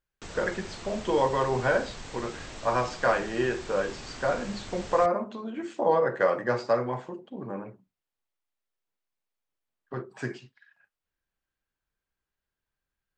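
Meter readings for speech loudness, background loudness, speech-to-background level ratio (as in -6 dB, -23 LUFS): -28.5 LUFS, -42.0 LUFS, 13.5 dB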